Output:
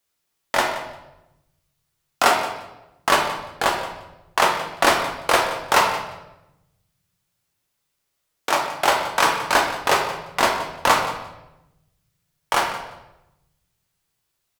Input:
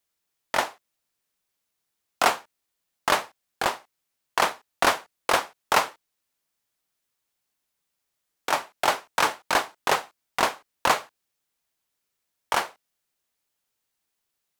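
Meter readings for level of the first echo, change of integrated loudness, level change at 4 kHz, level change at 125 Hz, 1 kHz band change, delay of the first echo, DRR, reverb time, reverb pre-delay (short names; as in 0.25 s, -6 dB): -15.0 dB, +5.0 dB, +5.0 dB, +8.0 dB, +5.5 dB, 0.174 s, 1.0 dB, 0.95 s, 7 ms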